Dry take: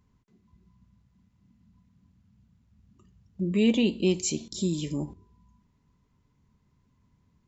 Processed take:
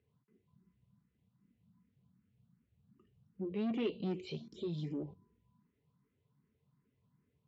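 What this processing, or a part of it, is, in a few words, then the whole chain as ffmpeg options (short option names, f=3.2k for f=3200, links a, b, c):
barber-pole phaser into a guitar amplifier: -filter_complex "[0:a]asplit=2[a][b];[b]afreqshift=2.6[c];[a][c]amix=inputs=2:normalize=1,asoftclip=type=tanh:threshold=-26.5dB,highpass=110,equalizer=f=140:t=q:w=4:g=6,equalizer=f=450:t=q:w=4:g=8,equalizer=f=930:t=q:w=4:g=-4,lowpass=f=3.8k:w=0.5412,lowpass=f=3.8k:w=1.3066,volume=-6dB"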